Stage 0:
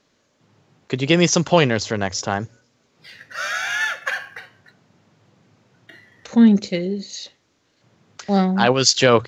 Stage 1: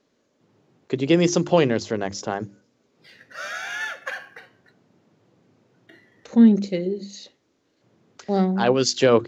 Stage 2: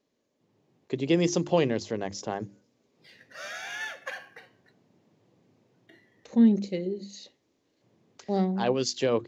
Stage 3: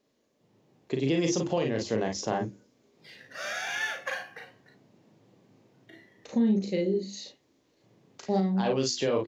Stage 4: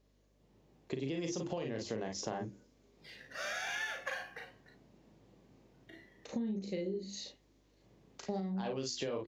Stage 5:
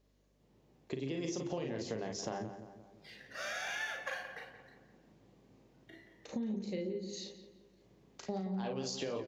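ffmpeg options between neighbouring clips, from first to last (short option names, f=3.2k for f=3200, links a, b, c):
-af "equalizer=f=330:t=o:w=1.9:g=9.5,bandreject=f=50:t=h:w=6,bandreject=f=100:t=h:w=6,bandreject=f=150:t=h:w=6,bandreject=f=200:t=h:w=6,bandreject=f=250:t=h:w=6,bandreject=f=300:t=h:w=6,bandreject=f=350:t=h:w=6,volume=-8dB"
-af "equalizer=f=1.4k:w=3.9:g=-7,dynaudnorm=f=120:g=11:m=4.5dB,volume=-8.5dB"
-filter_complex "[0:a]asplit=2[a][b];[b]aecho=0:1:37|52:0.596|0.376[c];[a][c]amix=inputs=2:normalize=0,alimiter=limit=-19.5dB:level=0:latency=1:release=310,volume=2.5dB"
-af "acompressor=threshold=-32dB:ratio=5,aeval=exprs='val(0)+0.000398*(sin(2*PI*50*n/s)+sin(2*PI*2*50*n/s)/2+sin(2*PI*3*50*n/s)/3+sin(2*PI*4*50*n/s)/4+sin(2*PI*5*50*n/s)/5)':c=same,volume=-3dB"
-filter_complex "[0:a]asplit=2[a][b];[b]adelay=174,lowpass=f=2.2k:p=1,volume=-9.5dB,asplit=2[c][d];[d]adelay=174,lowpass=f=2.2k:p=1,volume=0.52,asplit=2[e][f];[f]adelay=174,lowpass=f=2.2k:p=1,volume=0.52,asplit=2[g][h];[h]adelay=174,lowpass=f=2.2k:p=1,volume=0.52,asplit=2[i][j];[j]adelay=174,lowpass=f=2.2k:p=1,volume=0.52,asplit=2[k][l];[l]adelay=174,lowpass=f=2.2k:p=1,volume=0.52[m];[a][c][e][g][i][k][m]amix=inputs=7:normalize=0,volume=-1dB"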